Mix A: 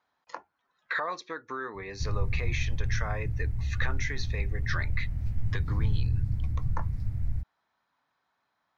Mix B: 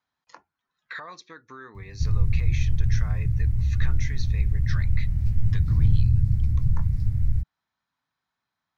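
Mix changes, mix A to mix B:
background +7.5 dB; master: add EQ curve 150 Hz 0 dB, 550 Hz -11 dB, 5800 Hz -1 dB

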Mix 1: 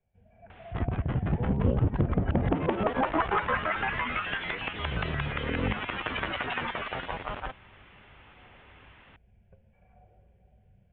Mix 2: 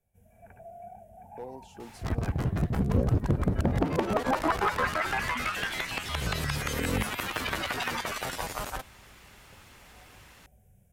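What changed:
second sound: entry +1.30 s; master: remove steep low-pass 3400 Hz 72 dB/oct

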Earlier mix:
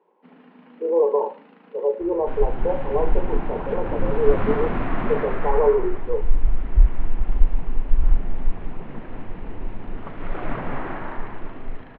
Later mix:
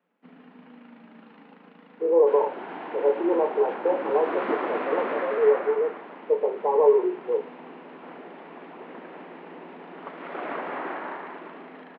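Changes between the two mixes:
speech: entry +1.20 s; second sound: add HPF 320 Hz 24 dB/oct

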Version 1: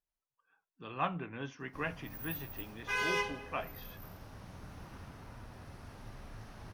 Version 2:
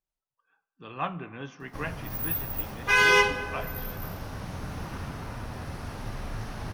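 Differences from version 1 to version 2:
background +10.0 dB; reverb: on, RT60 2.5 s

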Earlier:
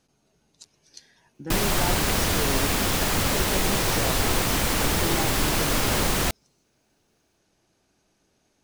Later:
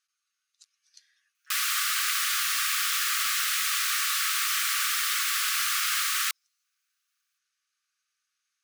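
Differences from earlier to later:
speech -8.5 dB; master: add brick-wall FIR high-pass 1100 Hz

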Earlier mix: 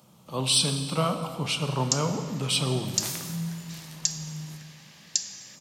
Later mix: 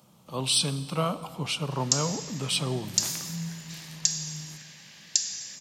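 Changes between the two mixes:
speech: send -9.0 dB; background: send +7.0 dB

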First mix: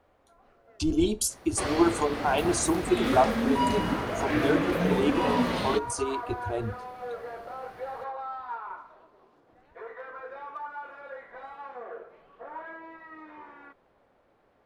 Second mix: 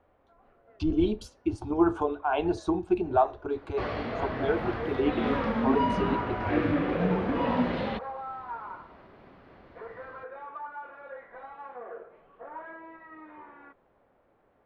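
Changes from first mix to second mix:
second sound: entry +2.20 s; master: add air absorption 320 m

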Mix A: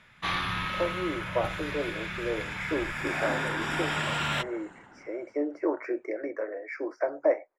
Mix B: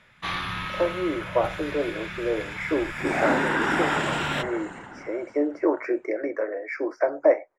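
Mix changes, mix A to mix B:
speech +5.5 dB; second sound +11.0 dB

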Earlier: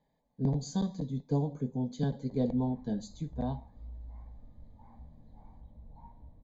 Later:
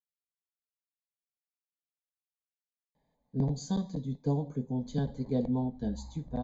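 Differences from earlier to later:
speech: entry +2.95 s; background: entry +2.50 s

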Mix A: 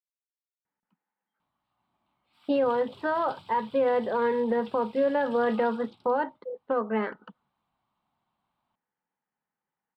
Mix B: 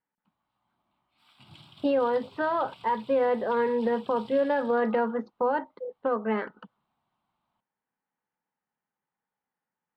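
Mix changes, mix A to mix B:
speech: entry -0.65 s; background: entry -1.15 s

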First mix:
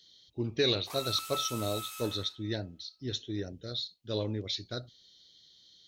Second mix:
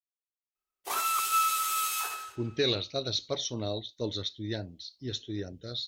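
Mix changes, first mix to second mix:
speech: entry +2.00 s; background +12.0 dB

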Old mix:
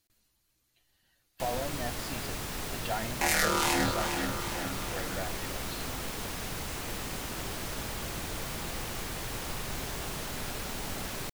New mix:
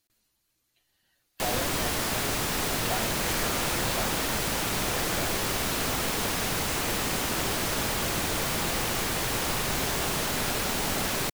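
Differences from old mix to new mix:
first sound +9.5 dB; second sound -9.5 dB; master: add low shelf 100 Hz -8 dB

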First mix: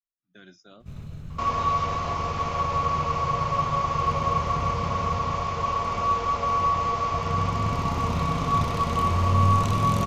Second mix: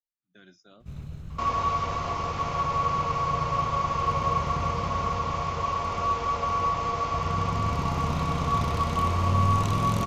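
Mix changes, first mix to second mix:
speech -4.0 dB; reverb: off

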